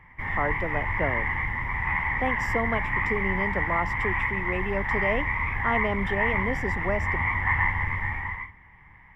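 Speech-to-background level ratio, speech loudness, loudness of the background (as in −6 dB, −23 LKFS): −5.0 dB, −31.5 LKFS, −26.5 LKFS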